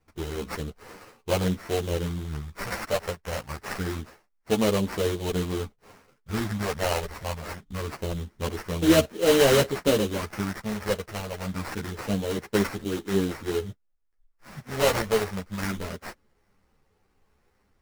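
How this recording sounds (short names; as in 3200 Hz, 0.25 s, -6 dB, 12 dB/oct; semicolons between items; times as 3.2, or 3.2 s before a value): a buzz of ramps at a fixed pitch in blocks of 8 samples; phasing stages 4, 0.25 Hz, lowest notch 280–4000 Hz; aliases and images of a low sample rate 3500 Hz, jitter 20%; a shimmering, thickened sound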